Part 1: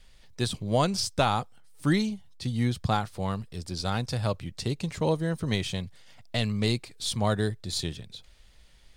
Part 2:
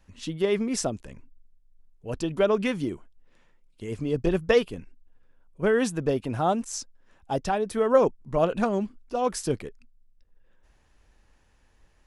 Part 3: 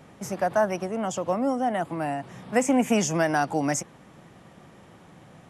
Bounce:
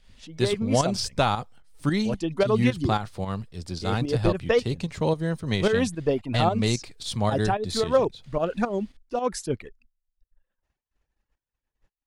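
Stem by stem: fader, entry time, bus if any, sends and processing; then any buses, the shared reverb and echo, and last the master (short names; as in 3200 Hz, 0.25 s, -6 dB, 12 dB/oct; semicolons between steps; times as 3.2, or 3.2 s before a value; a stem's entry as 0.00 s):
+2.0 dB, 0.00 s, no send, dry
-7.5 dB, 0.00 s, no send, expander -47 dBFS; reverb removal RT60 0.86 s; AGC gain up to 11.5 dB
off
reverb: off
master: high shelf 8400 Hz -7.5 dB; pump 111 bpm, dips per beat 2, -9 dB, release 0.146 s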